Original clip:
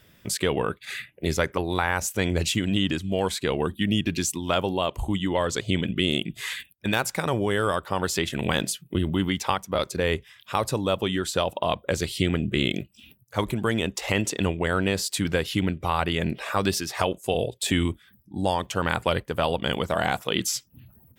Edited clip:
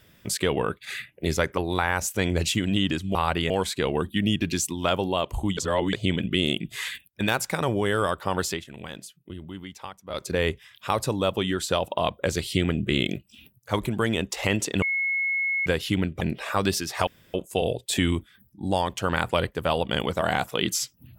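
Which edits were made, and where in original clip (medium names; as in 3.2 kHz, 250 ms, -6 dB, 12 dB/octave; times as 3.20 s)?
5.22–5.58 s: reverse
8.09–9.93 s: dip -14 dB, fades 0.20 s
14.47–15.31 s: bleep 2.18 kHz -22.5 dBFS
15.86–16.21 s: move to 3.15 s
17.07 s: insert room tone 0.27 s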